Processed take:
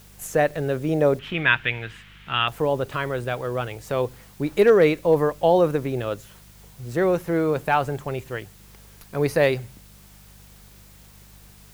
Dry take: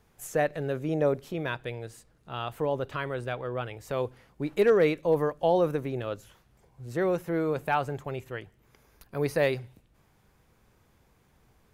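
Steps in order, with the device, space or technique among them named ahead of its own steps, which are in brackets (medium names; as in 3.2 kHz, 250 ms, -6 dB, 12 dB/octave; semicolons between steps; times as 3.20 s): video cassette with head-switching buzz (mains buzz 50 Hz, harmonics 4, -57 dBFS -4 dB/octave; white noise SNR 29 dB); 1.19–2.48 s: FFT filter 250 Hz 0 dB, 550 Hz -7 dB, 1.7 kHz +12 dB, 3.1 kHz +13 dB, 4.5 kHz -5 dB, 6.3 kHz -10 dB, 9.1 kHz -14 dB; trim +6 dB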